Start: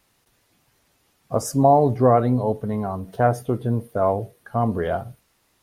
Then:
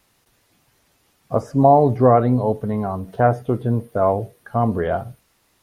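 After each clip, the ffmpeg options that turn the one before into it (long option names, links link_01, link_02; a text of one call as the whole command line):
ffmpeg -i in.wav -filter_complex "[0:a]acrossover=split=3100[link_01][link_02];[link_02]acompressor=threshold=-57dB:ratio=4:attack=1:release=60[link_03];[link_01][link_03]amix=inputs=2:normalize=0,volume=2.5dB" out.wav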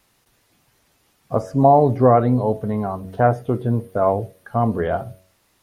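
ffmpeg -i in.wav -af "bandreject=frequency=93.38:width_type=h:width=4,bandreject=frequency=186.76:width_type=h:width=4,bandreject=frequency=280.14:width_type=h:width=4,bandreject=frequency=373.52:width_type=h:width=4,bandreject=frequency=466.9:width_type=h:width=4,bandreject=frequency=560.28:width_type=h:width=4,bandreject=frequency=653.66:width_type=h:width=4" out.wav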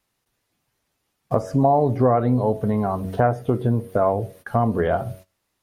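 ffmpeg -i in.wav -af "agate=range=-18dB:threshold=-45dB:ratio=16:detection=peak,acompressor=threshold=-25dB:ratio=2.5,volume=6dB" out.wav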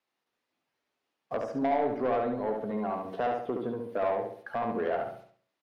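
ffmpeg -i in.wav -filter_complex "[0:a]acrossover=split=220 5100:gain=0.0794 1 0.2[link_01][link_02][link_03];[link_01][link_02][link_03]amix=inputs=3:normalize=0,asoftclip=type=tanh:threshold=-15.5dB,asplit=2[link_04][link_05];[link_05]adelay=70,lowpass=frequency=4600:poles=1,volume=-3.5dB,asplit=2[link_06][link_07];[link_07]adelay=70,lowpass=frequency=4600:poles=1,volume=0.39,asplit=2[link_08][link_09];[link_09]adelay=70,lowpass=frequency=4600:poles=1,volume=0.39,asplit=2[link_10][link_11];[link_11]adelay=70,lowpass=frequency=4600:poles=1,volume=0.39,asplit=2[link_12][link_13];[link_13]adelay=70,lowpass=frequency=4600:poles=1,volume=0.39[link_14];[link_06][link_08][link_10][link_12][link_14]amix=inputs=5:normalize=0[link_15];[link_04][link_15]amix=inputs=2:normalize=0,volume=-7.5dB" out.wav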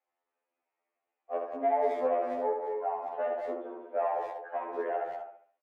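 ffmpeg -i in.wav -filter_complex "[0:a]highpass=frequency=320:width=0.5412,highpass=frequency=320:width=1.3066,equalizer=frequency=550:width_type=q:width=4:gain=3,equalizer=frequency=780:width_type=q:width=4:gain=6,equalizer=frequency=1500:width_type=q:width=4:gain=-3,lowpass=frequency=2400:width=0.5412,lowpass=frequency=2400:width=1.3066,asplit=2[link_01][link_02];[link_02]adelay=190,highpass=300,lowpass=3400,asoftclip=type=hard:threshold=-21.5dB,volume=-7dB[link_03];[link_01][link_03]amix=inputs=2:normalize=0,afftfilt=real='re*2*eq(mod(b,4),0)':imag='im*2*eq(mod(b,4),0)':win_size=2048:overlap=0.75,volume=-2dB" out.wav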